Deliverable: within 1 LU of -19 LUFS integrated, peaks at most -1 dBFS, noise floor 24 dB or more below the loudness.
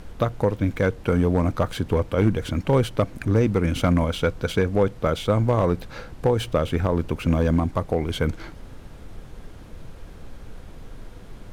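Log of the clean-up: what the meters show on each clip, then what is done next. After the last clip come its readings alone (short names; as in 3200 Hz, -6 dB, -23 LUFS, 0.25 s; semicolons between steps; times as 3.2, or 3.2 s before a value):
clipped 0.3%; flat tops at -11.0 dBFS; noise floor -42 dBFS; noise floor target -47 dBFS; loudness -23.0 LUFS; peak -11.0 dBFS; loudness target -19.0 LUFS
-> clip repair -11 dBFS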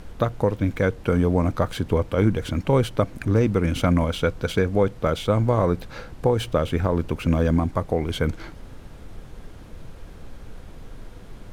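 clipped 0.0%; noise floor -42 dBFS; noise floor target -47 dBFS
-> noise print and reduce 6 dB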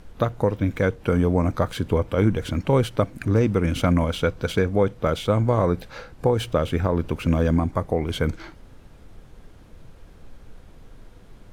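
noise floor -48 dBFS; loudness -23.0 LUFS; peak -7.5 dBFS; loudness target -19.0 LUFS
-> gain +4 dB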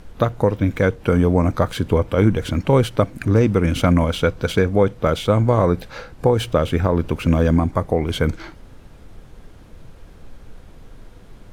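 loudness -19.0 LUFS; peak -3.5 dBFS; noise floor -44 dBFS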